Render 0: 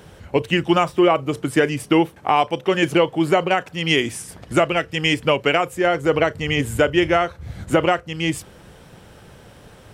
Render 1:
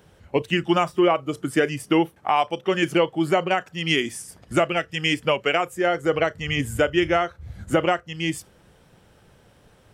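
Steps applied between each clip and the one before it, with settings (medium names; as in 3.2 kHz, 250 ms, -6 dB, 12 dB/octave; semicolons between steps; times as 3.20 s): spectral noise reduction 7 dB; trim -3 dB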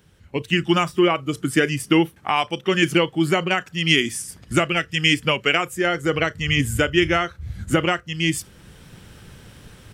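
level rider gain up to 13 dB; peaking EQ 660 Hz -10.5 dB 1.6 oct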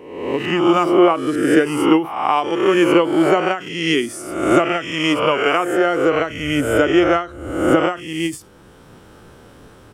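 reverse spectral sustain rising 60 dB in 0.88 s; high-order bell 590 Hz +10 dB 2.8 oct; endings held to a fixed fall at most 170 dB/s; trim -6 dB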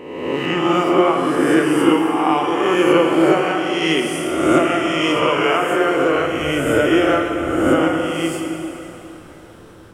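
reverse spectral sustain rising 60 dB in 1.20 s; plate-style reverb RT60 3.5 s, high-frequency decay 0.8×, DRR 2 dB; trim -4 dB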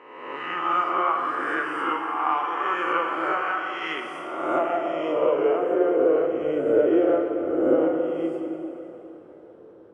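band-pass sweep 1.3 kHz -> 460 Hz, 3.91–5.51 s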